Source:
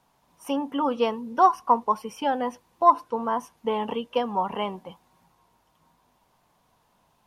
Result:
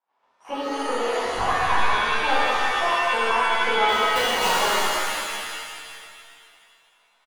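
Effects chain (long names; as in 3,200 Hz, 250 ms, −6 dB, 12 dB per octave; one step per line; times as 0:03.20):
gate pattern ".xxx.xxxxx" 187 BPM −12 dB
downward compressor 8 to 1, threshold −30 dBFS, peak gain reduction 18.5 dB
high-pass filter 580 Hz 12 dB per octave
leveller curve on the samples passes 2
low-pass filter 2,400 Hz 12 dB per octave
on a send: repeating echo 97 ms, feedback 38%, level −12.5 dB
0:01.25–0:01.74: on the sum: linear-prediction vocoder at 8 kHz whisper
0:03.83–0:04.58: wrap-around overflow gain 23.5 dB
output level in coarse steps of 10 dB
reverb with rising layers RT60 2.1 s, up +7 semitones, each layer −2 dB, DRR −11 dB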